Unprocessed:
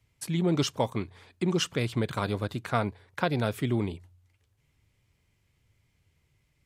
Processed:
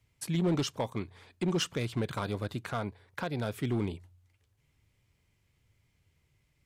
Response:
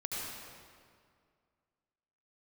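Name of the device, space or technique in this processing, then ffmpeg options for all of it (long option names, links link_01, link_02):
limiter into clipper: -af "alimiter=limit=-16.5dB:level=0:latency=1:release=428,asoftclip=type=hard:threshold=-21.5dB,volume=-1.5dB"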